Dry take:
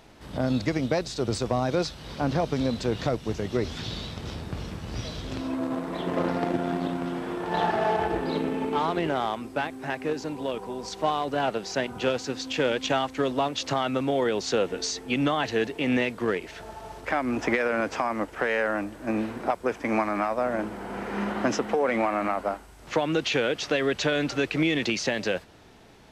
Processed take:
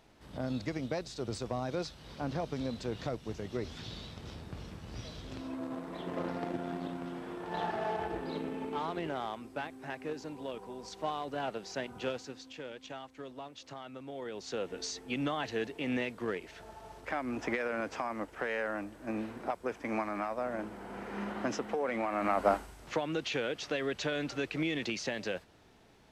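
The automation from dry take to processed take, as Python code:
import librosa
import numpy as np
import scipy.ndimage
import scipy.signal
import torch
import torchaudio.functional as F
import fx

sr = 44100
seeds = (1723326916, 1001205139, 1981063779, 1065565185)

y = fx.gain(x, sr, db=fx.line((12.09, -10.0), (12.62, -19.5), (14.01, -19.5), (14.81, -9.0), (22.06, -9.0), (22.55, 3.5), (23.02, -9.0)))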